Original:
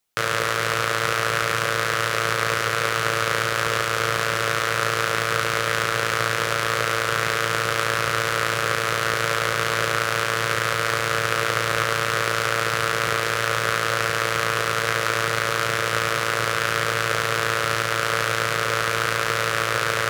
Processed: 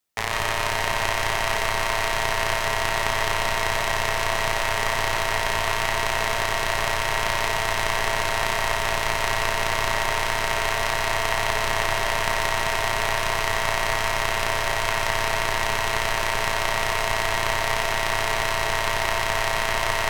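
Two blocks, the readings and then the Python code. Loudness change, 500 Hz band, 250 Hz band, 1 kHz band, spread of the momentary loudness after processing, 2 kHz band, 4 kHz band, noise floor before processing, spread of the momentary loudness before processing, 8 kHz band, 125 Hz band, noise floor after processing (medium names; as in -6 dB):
-1.5 dB, -2.0 dB, -3.5 dB, 0.0 dB, 0 LU, -2.0 dB, -0.5 dB, -25 dBFS, 0 LU, -0.5 dB, -3.0 dB, -25 dBFS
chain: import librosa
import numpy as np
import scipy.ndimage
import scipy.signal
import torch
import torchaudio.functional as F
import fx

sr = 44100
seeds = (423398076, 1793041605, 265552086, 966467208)

y = x * np.sin(2.0 * np.pi * 550.0 * np.arange(len(x)) / sr)
y = fx.echo_alternate(y, sr, ms=239, hz=1000.0, feedback_pct=75, wet_db=-8.0)
y = fx.rev_freeverb(y, sr, rt60_s=0.47, hf_ratio=0.7, predelay_ms=105, drr_db=3.0)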